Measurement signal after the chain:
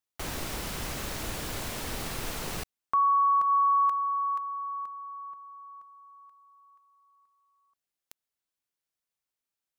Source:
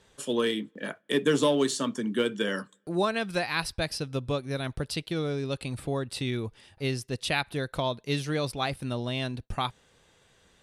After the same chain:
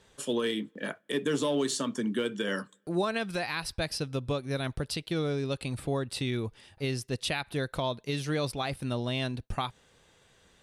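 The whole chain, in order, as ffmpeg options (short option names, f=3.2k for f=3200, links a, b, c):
-af "alimiter=limit=-19.5dB:level=0:latency=1:release=113"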